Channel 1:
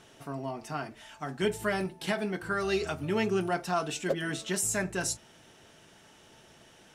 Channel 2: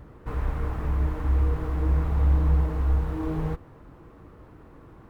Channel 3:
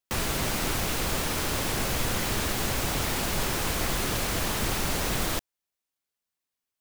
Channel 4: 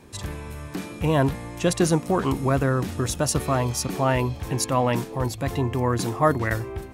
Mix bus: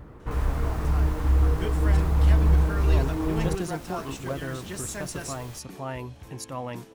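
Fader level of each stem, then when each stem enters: -6.0, +2.0, -19.5, -12.5 dB; 0.20, 0.00, 0.20, 1.80 s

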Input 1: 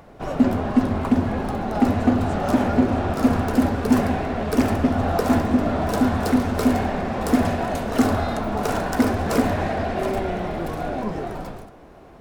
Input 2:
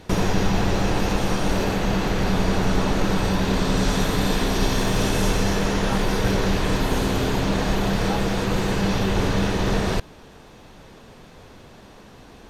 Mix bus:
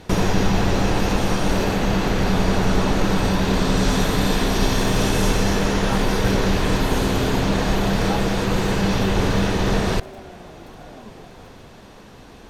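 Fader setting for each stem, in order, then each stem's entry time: -15.5, +2.0 dB; 0.00, 0.00 s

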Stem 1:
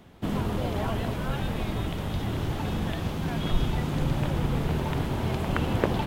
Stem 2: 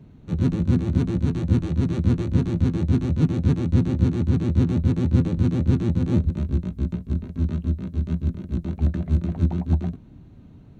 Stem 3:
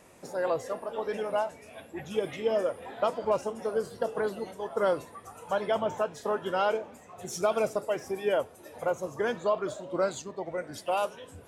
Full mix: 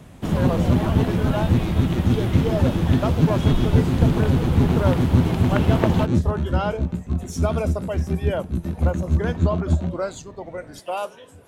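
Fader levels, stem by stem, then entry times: +2.5, +1.0, +1.0 dB; 0.00, 0.00, 0.00 s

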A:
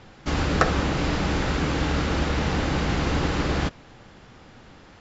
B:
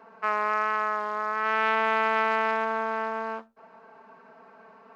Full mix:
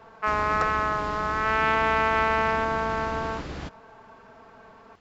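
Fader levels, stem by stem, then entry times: -11.5, +1.5 dB; 0.00, 0.00 s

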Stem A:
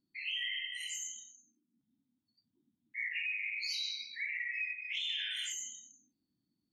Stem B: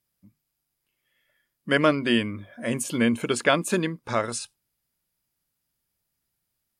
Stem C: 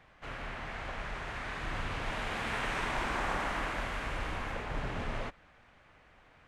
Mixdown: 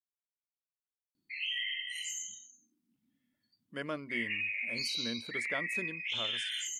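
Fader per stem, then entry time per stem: +1.5 dB, -18.0 dB, off; 1.15 s, 2.05 s, off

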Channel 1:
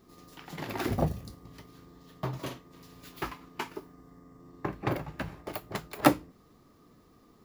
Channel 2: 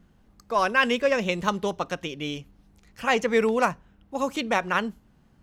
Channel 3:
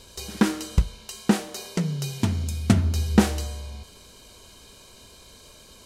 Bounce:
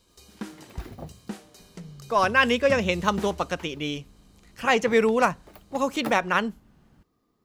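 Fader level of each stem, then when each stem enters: -12.0, +1.5, -16.0 dB; 0.00, 1.60, 0.00 s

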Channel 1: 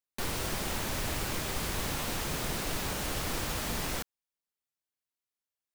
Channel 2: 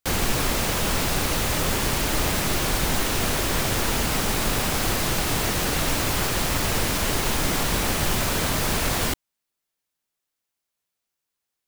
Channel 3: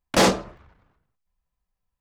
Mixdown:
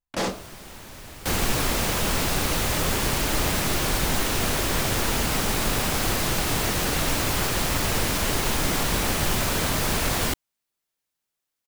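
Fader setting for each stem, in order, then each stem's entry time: -8.5, -0.5, -9.5 dB; 0.00, 1.20, 0.00 s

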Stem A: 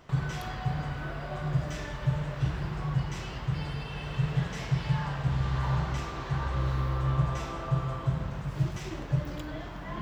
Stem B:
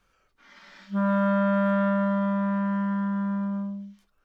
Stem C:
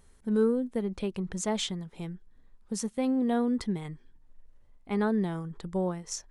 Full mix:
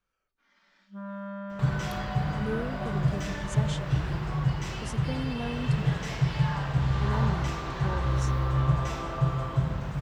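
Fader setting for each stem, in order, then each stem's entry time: +2.5, -15.0, -8.0 dB; 1.50, 0.00, 2.10 s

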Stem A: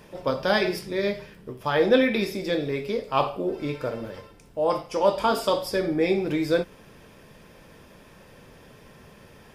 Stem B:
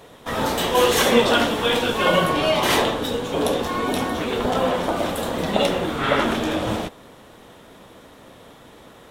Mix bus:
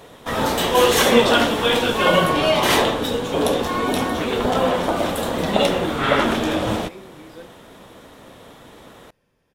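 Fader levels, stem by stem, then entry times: -18.5, +2.0 dB; 0.85, 0.00 s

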